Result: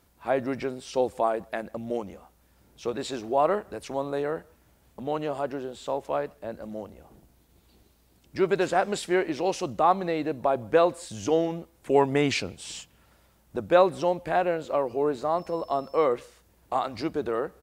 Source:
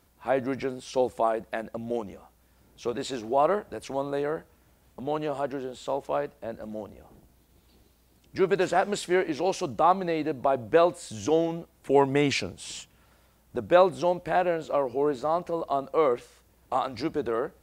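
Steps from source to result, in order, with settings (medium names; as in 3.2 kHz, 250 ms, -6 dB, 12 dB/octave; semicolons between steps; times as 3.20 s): speakerphone echo 160 ms, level -30 dB; 15.37–16.03 s: whistle 5.3 kHz -56 dBFS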